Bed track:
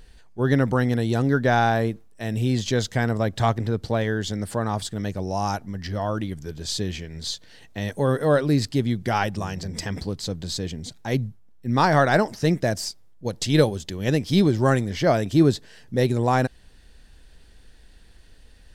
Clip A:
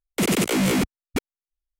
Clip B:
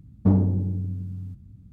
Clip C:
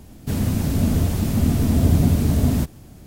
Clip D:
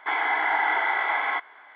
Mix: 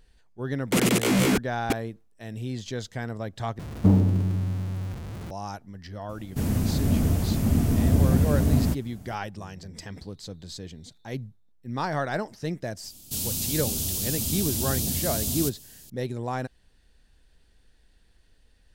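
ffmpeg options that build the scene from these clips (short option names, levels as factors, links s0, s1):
-filter_complex "[3:a]asplit=2[s0][s1];[0:a]volume=0.316[s2];[2:a]aeval=exprs='val(0)+0.5*0.0237*sgn(val(0))':c=same[s3];[s0]equalizer=f=3800:w=1.8:g=-3.5[s4];[4:a]asuperpass=centerf=4000:order=20:qfactor=4.4[s5];[s1]aexciter=amount=8:drive=7.3:freq=2800[s6];[s2]asplit=2[s7][s8];[s7]atrim=end=3.594[s9];[s3]atrim=end=1.72[s10];[s8]atrim=start=5.306[s11];[1:a]atrim=end=1.79,asetpts=PTS-STARTPTS,volume=0.891,afade=t=in:d=0.004:c=hsin,afade=t=out:st=1.786:d=0.004:c=hsin,adelay=540[s12];[s4]atrim=end=3.06,asetpts=PTS-STARTPTS,volume=0.668,afade=t=in:d=0.004:c=hsin,afade=t=out:st=3.056:d=0.004:c=hsin,adelay=6090[s13];[s5]atrim=end=1.75,asetpts=PTS-STARTPTS,volume=0.251,afade=t=in:d=0.004:c=hsin,afade=t=out:st=1.746:d=0.004:c=hsin,adelay=9770[s14];[s6]atrim=end=3.06,asetpts=PTS-STARTPTS,volume=0.178,afade=t=in:d=0.004:c=hsin,afade=t=out:st=3.056:d=0.004:c=hsin,adelay=566244S[s15];[s9][s10]acrossfade=d=0.004:c1=hsin:c2=hsin[s16];[s16][s11]acrossfade=d=0.004:c1=hsin:c2=hsin[s17];[s17][s12][s13][s14][s15]amix=inputs=5:normalize=0"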